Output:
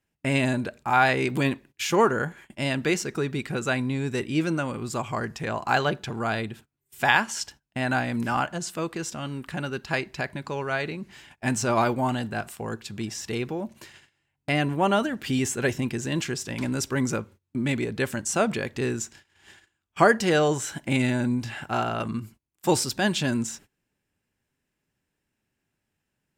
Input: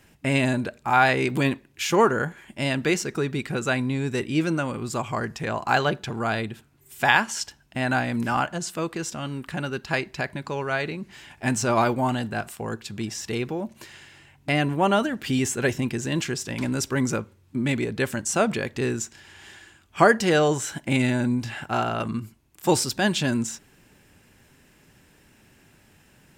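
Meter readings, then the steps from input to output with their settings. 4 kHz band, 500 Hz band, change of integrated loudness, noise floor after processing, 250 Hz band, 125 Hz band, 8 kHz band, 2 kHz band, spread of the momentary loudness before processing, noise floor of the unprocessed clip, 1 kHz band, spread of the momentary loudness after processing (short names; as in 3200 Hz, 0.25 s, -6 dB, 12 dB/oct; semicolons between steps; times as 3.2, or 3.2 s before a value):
-1.5 dB, -1.5 dB, -1.5 dB, -81 dBFS, -1.5 dB, -1.5 dB, -1.5 dB, -1.5 dB, 12 LU, -58 dBFS, -1.5 dB, 12 LU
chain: gate -45 dBFS, range -22 dB; gain -1.5 dB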